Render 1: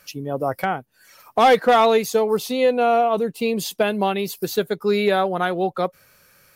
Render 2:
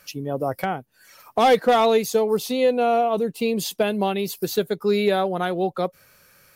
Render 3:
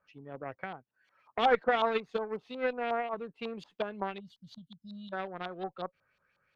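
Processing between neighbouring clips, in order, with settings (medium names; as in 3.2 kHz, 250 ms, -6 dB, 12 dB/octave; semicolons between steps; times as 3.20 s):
dynamic bell 1.4 kHz, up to -5 dB, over -31 dBFS, Q 0.71
spectral selection erased 4.20–5.13 s, 260–2800 Hz; Chebyshev shaper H 2 -26 dB, 3 -12 dB, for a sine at -8 dBFS; LFO low-pass saw up 5.5 Hz 940–3600 Hz; trim -8 dB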